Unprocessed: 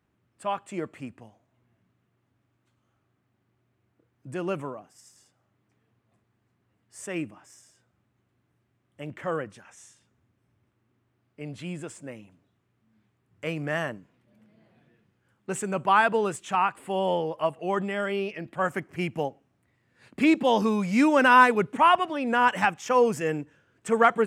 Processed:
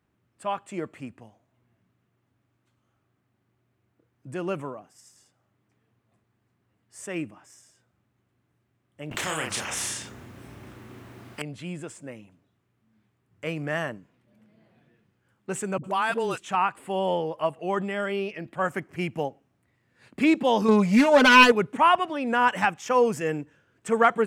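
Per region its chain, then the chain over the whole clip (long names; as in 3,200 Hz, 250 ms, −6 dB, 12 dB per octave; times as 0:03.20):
0:09.11–0:11.42: double-tracking delay 32 ms −5 dB + every bin compressed towards the loudest bin 4 to 1
0:15.78–0:16.38: high-shelf EQ 3,500 Hz +11.5 dB + all-pass dispersion highs, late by 60 ms, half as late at 400 Hz + downward compressor 3 to 1, threshold −23 dBFS
0:20.68–0:21.52: phase distortion by the signal itself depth 0.23 ms + parametric band 590 Hz +6 dB 1.1 octaves + comb filter 4.7 ms, depth 88%
whole clip: no processing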